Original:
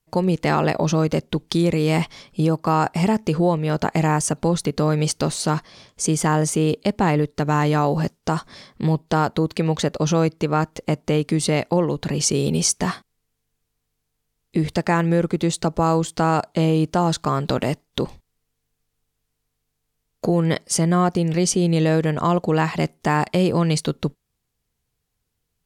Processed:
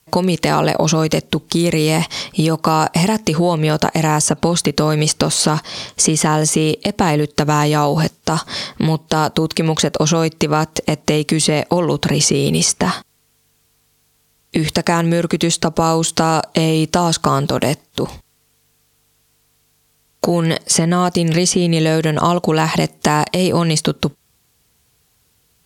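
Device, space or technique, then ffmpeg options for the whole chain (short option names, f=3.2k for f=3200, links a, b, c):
mastering chain: -filter_complex "[0:a]highpass=50,equalizer=f=1.9k:t=o:w=0.77:g=-2,acrossover=split=1300|2700|5400[a][b][c][d];[a]acompressor=threshold=-23dB:ratio=4[e];[b]acompressor=threshold=-44dB:ratio=4[f];[c]acompressor=threshold=-42dB:ratio=4[g];[d]acompressor=threshold=-37dB:ratio=4[h];[e][f][g][h]amix=inputs=4:normalize=0,acompressor=threshold=-30dB:ratio=2,tiltshelf=f=840:g=-3,alimiter=level_in=18dB:limit=-1dB:release=50:level=0:latency=1,volume=-1dB"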